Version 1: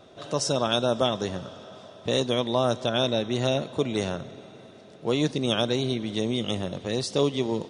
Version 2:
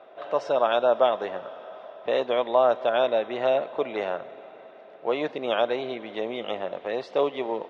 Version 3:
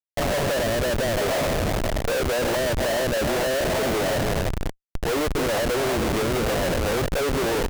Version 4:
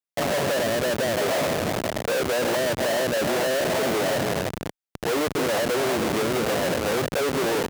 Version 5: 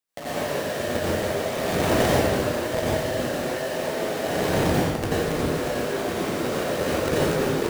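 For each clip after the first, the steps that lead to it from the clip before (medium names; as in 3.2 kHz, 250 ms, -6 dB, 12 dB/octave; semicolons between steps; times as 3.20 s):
Chebyshev band-pass 630–2400 Hz, order 2; tilt EQ -2.5 dB/octave; trim +5 dB
delay 306 ms -15 dB; low-pass that closes with the level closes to 370 Hz, closed at -17.5 dBFS; Schmitt trigger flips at -38 dBFS; trim +6.5 dB
high-pass 140 Hz 12 dB/octave
saturation -20 dBFS, distortion -18 dB; compressor with a negative ratio -31 dBFS, ratio -0.5; plate-style reverb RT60 1.6 s, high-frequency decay 0.8×, pre-delay 75 ms, DRR -9.5 dB; trim -1.5 dB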